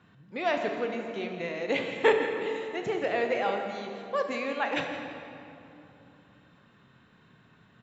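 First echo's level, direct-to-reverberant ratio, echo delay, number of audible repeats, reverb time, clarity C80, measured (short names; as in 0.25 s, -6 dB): -12.5 dB, 3.0 dB, 0.165 s, 1, 2.9 s, 5.0 dB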